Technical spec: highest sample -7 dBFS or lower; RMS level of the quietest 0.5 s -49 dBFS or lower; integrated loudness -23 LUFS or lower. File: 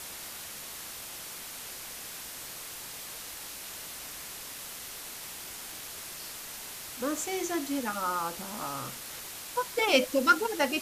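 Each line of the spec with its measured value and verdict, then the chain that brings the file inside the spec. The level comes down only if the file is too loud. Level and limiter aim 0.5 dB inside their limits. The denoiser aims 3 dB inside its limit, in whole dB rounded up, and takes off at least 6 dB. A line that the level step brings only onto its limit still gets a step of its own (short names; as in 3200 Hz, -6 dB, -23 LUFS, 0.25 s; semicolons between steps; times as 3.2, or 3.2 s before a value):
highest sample -10.5 dBFS: OK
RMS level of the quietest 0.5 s -42 dBFS: fail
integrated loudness -33.0 LUFS: OK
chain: denoiser 10 dB, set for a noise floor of -42 dBFS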